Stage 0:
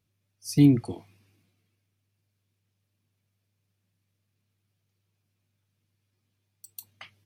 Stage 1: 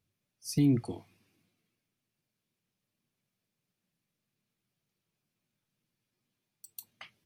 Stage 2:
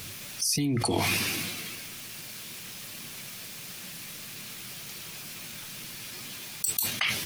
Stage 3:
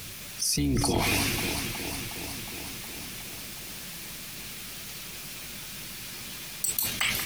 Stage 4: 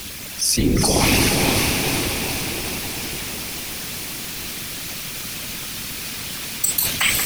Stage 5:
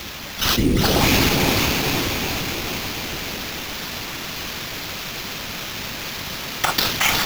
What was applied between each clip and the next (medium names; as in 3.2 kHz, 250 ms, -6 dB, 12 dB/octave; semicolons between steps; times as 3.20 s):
hum notches 50/100 Hz; peak limiter -14.5 dBFS, peak gain reduction 6.5 dB; trim -3 dB
tilt shelf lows -6 dB; level flattener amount 100%; trim +1 dB
octave divider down 2 oct, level -5 dB; on a send: echo whose repeats swap between lows and highs 182 ms, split 2 kHz, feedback 84%, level -6.5 dB
whisper effect; echo that smears into a reverb 475 ms, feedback 46%, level -3.5 dB; trim +8 dB
sample-rate reducer 9.1 kHz, jitter 0%